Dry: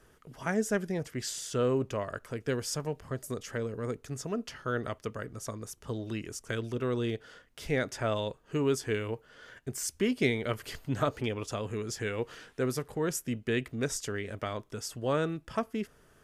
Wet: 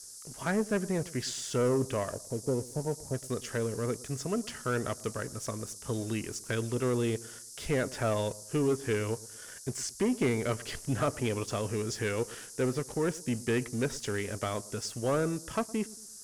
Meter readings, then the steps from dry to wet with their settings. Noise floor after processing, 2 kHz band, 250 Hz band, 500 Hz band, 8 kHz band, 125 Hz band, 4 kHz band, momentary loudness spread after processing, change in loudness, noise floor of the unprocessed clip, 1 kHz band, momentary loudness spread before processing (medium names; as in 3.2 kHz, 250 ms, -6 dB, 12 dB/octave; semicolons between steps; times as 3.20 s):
-48 dBFS, -0.5 dB, +1.5 dB, +1.0 dB, +2.0 dB, +2.0 dB, 0.0 dB, 8 LU, +1.0 dB, -62 dBFS, +0.5 dB, 10 LU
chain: low-pass that closes with the level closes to 1.9 kHz, closed at -24.5 dBFS; time-frequency box 2.13–3.14 s, 980–8400 Hz -27 dB; waveshaping leveller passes 2; on a send: feedback echo behind a low-pass 113 ms, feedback 37%, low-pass 1 kHz, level -19.5 dB; on the sum: band noise 5–11 kHz -43 dBFS; trim -5 dB